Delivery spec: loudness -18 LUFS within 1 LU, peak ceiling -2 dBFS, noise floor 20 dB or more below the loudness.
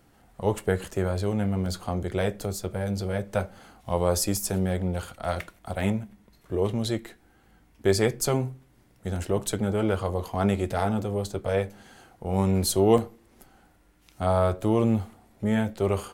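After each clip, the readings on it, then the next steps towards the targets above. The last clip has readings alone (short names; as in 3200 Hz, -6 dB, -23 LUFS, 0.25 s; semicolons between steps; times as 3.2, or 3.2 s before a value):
dropouts 3; longest dropout 1.6 ms; loudness -27.0 LUFS; peak -6.5 dBFS; loudness target -18.0 LUFS
-> interpolate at 1.66/9.16/12.98, 1.6 ms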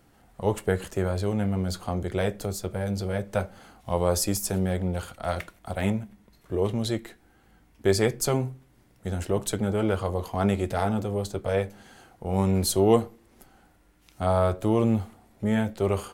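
dropouts 0; loudness -27.0 LUFS; peak -6.5 dBFS; loudness target -18.0 LUFS
-> gain +9 dB; limiter -2 dBFS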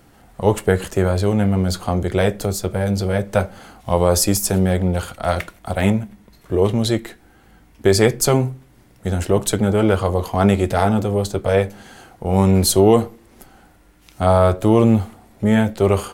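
loudness -18.5 LUFS; peak -2.0 dBFS; noise floor -51 dBFS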